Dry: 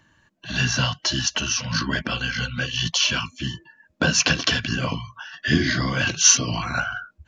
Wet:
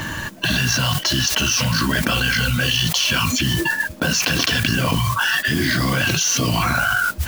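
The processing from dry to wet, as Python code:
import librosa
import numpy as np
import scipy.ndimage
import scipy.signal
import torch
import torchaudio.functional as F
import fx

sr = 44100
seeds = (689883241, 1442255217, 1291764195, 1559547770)

y = fx.mod_noise(x, sr, seeds[0], snr_db=14)
y = fx.env_flatten(y, sr, amount_pct=100)
y = y * librosa.db_to_amplitude(-7.5)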